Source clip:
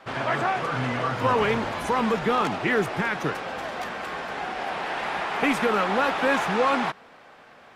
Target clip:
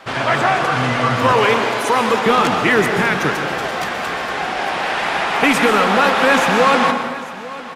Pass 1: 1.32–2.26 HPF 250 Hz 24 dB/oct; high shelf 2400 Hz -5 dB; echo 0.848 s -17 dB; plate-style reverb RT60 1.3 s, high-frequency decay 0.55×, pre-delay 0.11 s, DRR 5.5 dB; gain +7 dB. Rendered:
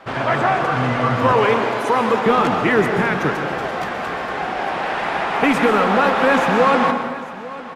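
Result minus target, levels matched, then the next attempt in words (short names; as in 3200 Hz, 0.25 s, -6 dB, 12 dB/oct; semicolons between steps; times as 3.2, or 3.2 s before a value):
4000 Hz band -5.0 dB
1.32–2.26 HPF 250 Hz 24 dB/oct; high shelf 2400 Hz +6 dB; echo 0.848 s -17 dB; plate-style reverb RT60 1.3 s, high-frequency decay 0.55×, pre-delay 0.11 s, DRR 5.5 dB; gain +7 dB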